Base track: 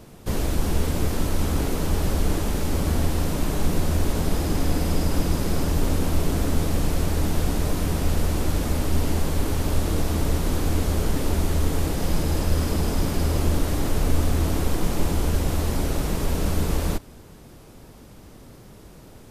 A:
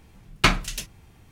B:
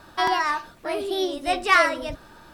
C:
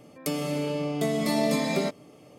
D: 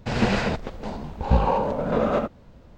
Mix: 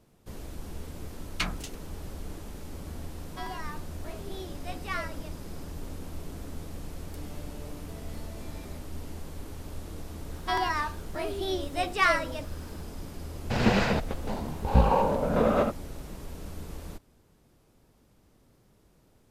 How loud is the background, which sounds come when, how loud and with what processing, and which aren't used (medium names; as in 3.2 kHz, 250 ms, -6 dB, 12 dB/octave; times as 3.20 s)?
base track -17 dB
0.96 s: add A -7.5 dB + harmonic tremolo 3.7 Hz, depth 100%, crossover 1.6 kHz
3.19 s: add B -17 dB
6.88 s: add C -18 dB + compression, threshold -27 dBFS
10.30 s: add B -6 dB
13.44 s: add D -1.5 dB